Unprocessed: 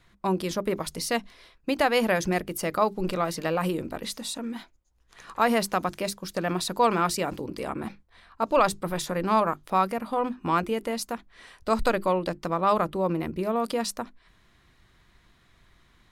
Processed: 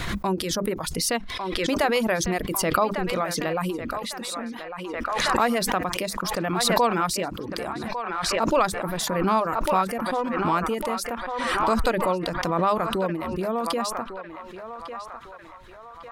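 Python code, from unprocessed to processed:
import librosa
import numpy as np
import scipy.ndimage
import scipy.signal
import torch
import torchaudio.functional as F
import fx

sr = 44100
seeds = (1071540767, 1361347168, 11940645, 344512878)

y = fx.dereverb_blind(x, sr, rt60_s=0.63)
y = fx.echo_banded(y, sr, ms=1151, feedback_pct=55, hz=1300.0, wet_db=-8.0)
y = fx.pre_swell(y, sr, db_per_s=25.0)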